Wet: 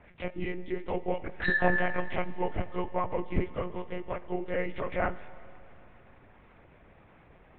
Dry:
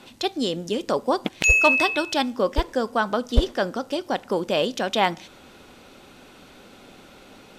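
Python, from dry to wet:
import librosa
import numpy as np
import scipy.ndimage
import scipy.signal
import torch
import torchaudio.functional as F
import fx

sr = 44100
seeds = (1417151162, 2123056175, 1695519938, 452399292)

y = fx.partial_stretch(x, sr, pct=83)
y = fx.lpc_monotone(y, sr, seeds[0], pitch_hz=180.0, order=10)
y = scipy.signal.sosfilt(scipy.signal.butter(2, 2300.0, 'lowpass', fs=sr, output='sos'), y)
y = fx.rev_schroeder(y, sr, rt60_s=3.1, comb_ms=31, drr_db=16.5)
y = y * 10.0 ** (-6.0 / 20.0)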